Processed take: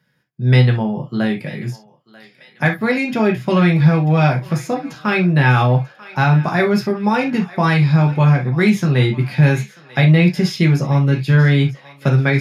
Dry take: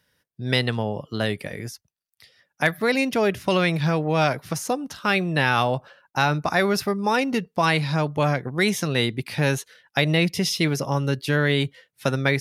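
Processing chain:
parametric band 140 Hz +13.5 dB 0.4 octaves
feedback echo with a high-pass in the loop 940 ms, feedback 53%, high-pass 900 Hz, level −17 dB
convolution reverb, pre-delay 3 ms, DRR 0.5 dB
level −6.5 dB

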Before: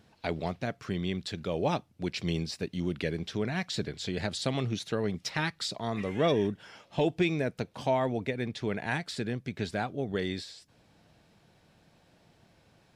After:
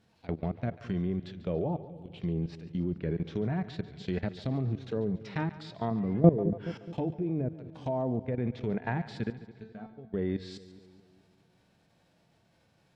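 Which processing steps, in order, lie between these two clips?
mains-hum notches 50/100/150 Hz
treble cut that deepens with the level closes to 680 Hz, closed at −25.5 dBFS
0:05.91–0:06.38: parametric band 180 Hz +13.5 dB 2.9 octaves
harmonic and percussive parts rebalanced percussive −13 dB
0:01.59–0:02.20: drawn EQ curve 180 Hz 0 dB, 830 Hz +1 dB, 1,900 Hz −17 dB, 3,100 Hz +6 dB, 5,300 Hz −12 dB, 8,800 Hz +10 dB
output level in coarse steps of 19 dB
0:09.30–0:10.14: tuned comb filter 220 Hz, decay 0.38 s, harmonics all, mix 90%
echo with a time of its own for lows and highs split 500 Hz, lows 211 ms, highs 142 ms, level −15.5 dB
boost into a limiter +15.5 dB
level −7.5 dB

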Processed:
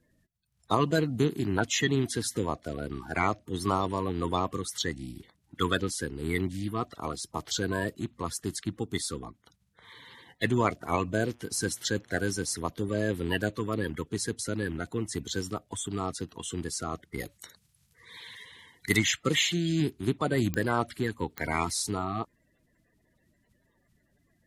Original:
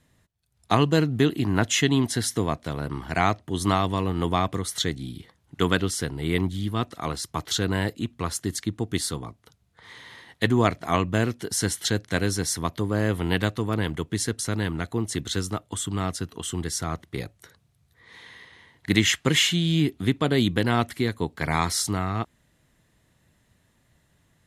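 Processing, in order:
spectral magnitudes quantised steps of 30 dB
0:11.26–0:12.59: hum with harmonics 120 Hz, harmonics 29, −59 dBFS −4 dB per octave
0:17.19–0:18.97: high-shelf EQ 2,100 Hz +11 dB
digital clicks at 0:20.54/0:21.38, −11 dBFS
level −4.5 dB

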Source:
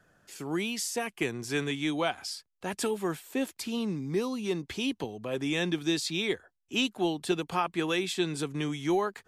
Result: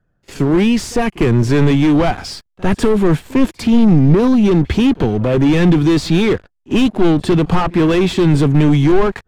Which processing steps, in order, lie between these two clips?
leveller curve on the samples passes 5
RIAA equalisation playback
echo ahead of the sound 51 ms −23 dB
level +1 dB

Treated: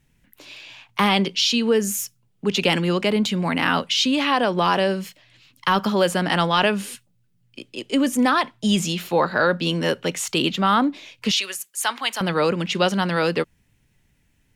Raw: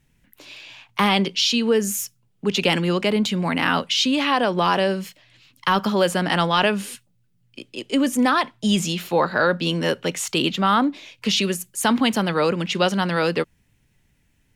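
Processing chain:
0:11.31–0:12.21: high-pass filter 930 Hz 12 dB per octave

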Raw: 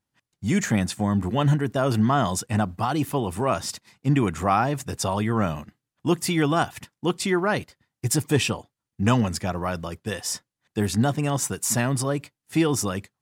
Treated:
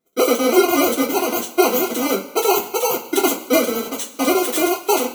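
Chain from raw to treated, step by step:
samples in bit-reversed order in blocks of 64 samples
coupled-rooms reverb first 0.49 s, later 2.7 s, from −17 dB, DRR −5.5 dB
change of speed 2.57×
level +1 dB

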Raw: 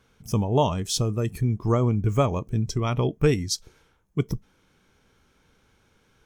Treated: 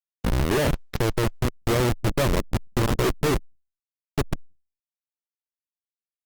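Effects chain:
turntable start at the beginning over 0.57 s
hard clipping −16 dBFS, distortion −17 dB
loudspeaker in its box 130–4,000 Hz, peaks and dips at 160 Hz −3 dB, 380 Hz +7 dB, 560 Hz +5 dB, 850 Hz −5 dB, 1,500 Hz −5 dB, 2,800 Hz +5 dB
comparator with hysteresis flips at −23.5 dBFS
level +6.5 dB
Opus 20 kbit/s 48,000 Hz

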